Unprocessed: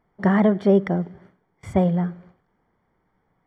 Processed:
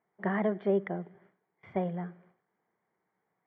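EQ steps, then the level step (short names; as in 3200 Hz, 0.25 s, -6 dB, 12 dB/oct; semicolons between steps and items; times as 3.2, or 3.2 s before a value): speaker cabinet 250–2800 Hz, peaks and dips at 270 Hz -9 dB, 530 Hz -4 dB, 890 Hz -3 dB, 1300 Hz -4 dB; -7.0 dB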